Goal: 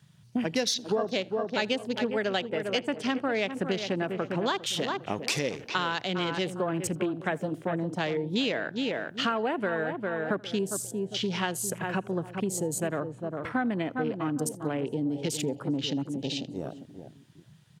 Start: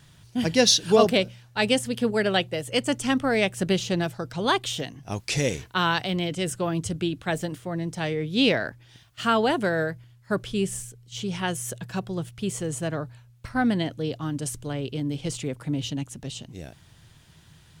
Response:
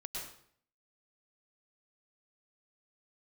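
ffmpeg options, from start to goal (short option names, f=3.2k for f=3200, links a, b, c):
-filter_complex "[0:a]highpass=210,asplit=2[a][b];[b]adelay=402,lowpass=f=2.6k:p=1,volume=-10dB,asplit=2[c][d];[d]adelay=402,lowpass=f=2.6k:p=1,volume=0.3,asplit=2[e][f];[f]adelay=402,lowpass=f=2.6k:p=1,volume=0.3[g];[a][c][e][g]amix=inputs=4:normalize=0,acompressor=threshold=-33dB:ratio=6,afwtdn=0.00501,asplit=2[h][i];[1:a]atrim=start_sample=2205,atrim=end_sample=4410,adelay=82[j];[i][j]afir=irnorm=-1:irlink=0,volume=-21dB[k];[h][k]amix=inputs=2:normalize=0,volume=7dB"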